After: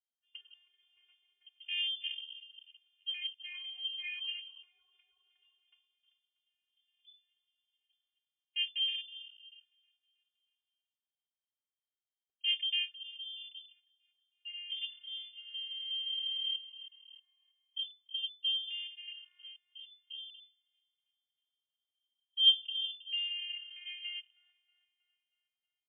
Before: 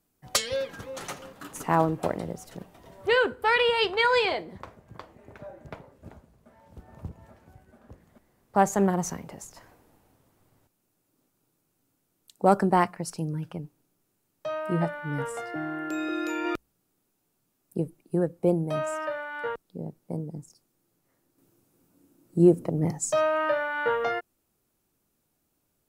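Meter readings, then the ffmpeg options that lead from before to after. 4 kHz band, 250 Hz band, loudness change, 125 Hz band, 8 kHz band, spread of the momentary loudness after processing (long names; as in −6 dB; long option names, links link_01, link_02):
+5.0 dB, below −40 dB, −7.5 dB, below −40 dB, below −40 dB, 19 LU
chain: -filter_complex "[0:a]highpass=frequency=130:width=0.5412,highpass=frequency=130:width=1.3066,equalizer=frequency=1500:width=0.57:gain=-8,aecho=1:1:318|636|954|1272|1590|1908:0.168|0.0957|0.0545|0.0311|0.0177|0.0101,flanger=delay=6.6:depth=7.1:regen=-68:speed=0.82:shape=sinusoidal,afftfilt=real='hypot(re,im)*cos(PI*b)':imag='0':win_size=512:overlap=0.75,acrossover=split=230|1800[link_01][link_02][link_03];[link_03]acompressor=threshold=-59dB:ratio=16[link_04];[link_01][link_02][link_04]amix=inputs=3:normalize=0,afwtdn=0.00891,highshelf=frequency=2300:gain=-11.5,lowpass=frequency=3000:width_type=q:width=0.5098,lowpass=frequency=3000:width_type=q:width=0.6013,lowpass=frequency=3000:width_type=q:width=0.9,lowpass=frequency=3000:width_type=q:width=2.563,afreqshift=-3500"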